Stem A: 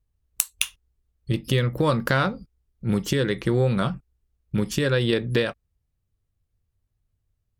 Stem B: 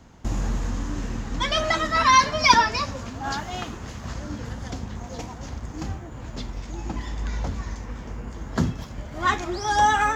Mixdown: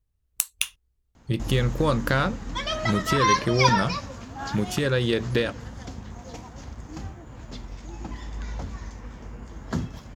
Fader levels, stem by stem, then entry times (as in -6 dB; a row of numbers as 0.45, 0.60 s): -1.5, -5.0 dB; 0.00, 1.15 s